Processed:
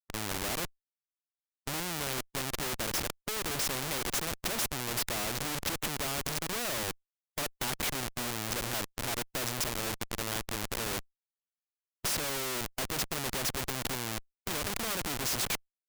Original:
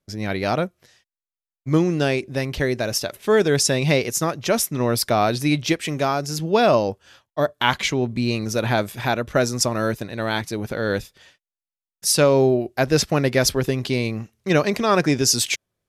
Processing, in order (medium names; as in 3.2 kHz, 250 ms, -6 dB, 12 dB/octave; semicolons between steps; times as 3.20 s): Schmitt trigger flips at -24 dBFS; spectrum-flattening compressor 2:1; trim -2 dB